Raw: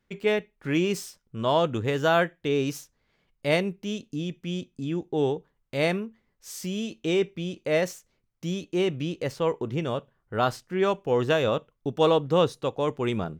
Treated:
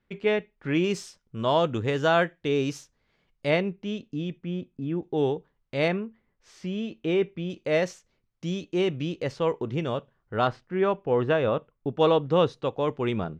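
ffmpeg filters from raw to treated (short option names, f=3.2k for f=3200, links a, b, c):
-af "asetnsamples=n=441:p=0,asendcmd='0.84 lowpass f 6900;3.5 lowpass f 3300;4.38 lowpass f 1900;5.03 lowpass f 4700;5.88 lowpass f 2700;7.5 lowpass f 5700;10.47 lowpass f 2300;11.99 lowpass f 4000',lowpass=3.8k"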